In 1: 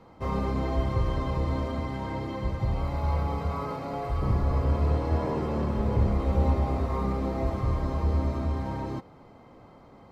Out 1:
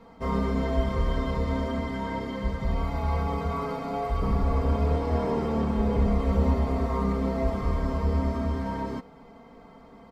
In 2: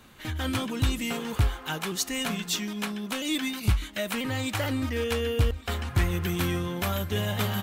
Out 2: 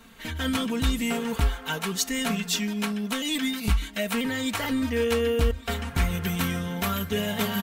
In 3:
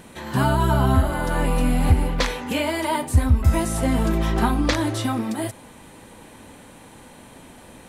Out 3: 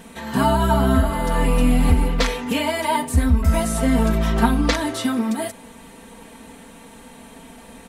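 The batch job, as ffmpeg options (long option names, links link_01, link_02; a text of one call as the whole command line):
ffmpeg -i in.wav -af "aecho=1:1:4.4:0.8" out.wav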